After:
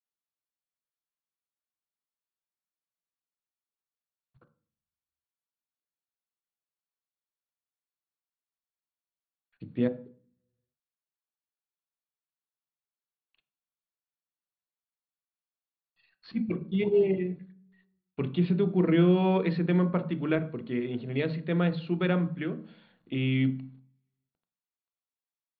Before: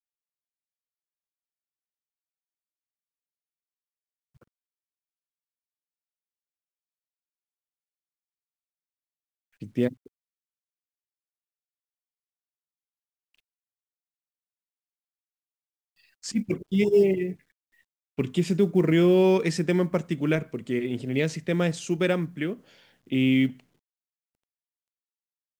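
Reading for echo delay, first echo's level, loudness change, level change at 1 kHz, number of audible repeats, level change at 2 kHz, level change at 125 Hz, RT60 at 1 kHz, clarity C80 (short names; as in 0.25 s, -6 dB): none, none, -3.0 dB, 0.0 dB, none, -4.5 dB, 0.0 dB, 0.40 s, 20.0 dB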